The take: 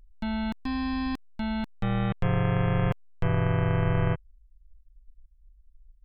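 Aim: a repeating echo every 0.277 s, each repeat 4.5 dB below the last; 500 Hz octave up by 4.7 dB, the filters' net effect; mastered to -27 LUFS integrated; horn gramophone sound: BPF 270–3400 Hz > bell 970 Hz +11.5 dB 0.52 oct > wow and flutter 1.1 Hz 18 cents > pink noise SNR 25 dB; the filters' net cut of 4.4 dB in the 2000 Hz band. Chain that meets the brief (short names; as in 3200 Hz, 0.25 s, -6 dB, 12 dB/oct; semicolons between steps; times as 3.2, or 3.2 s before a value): BPF 270–3400 Hz; bell 500 Hz +5 dB; bell 970 Hz +11.5 dB 0.52 oct; bell 2000 Hz -7.5 dB; feedback echo 0.277 s, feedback 60%, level -4.5 dB; wow and flutter 1.1 Hz 18 cents; pink noise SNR 25 dB; gain +1.5 dB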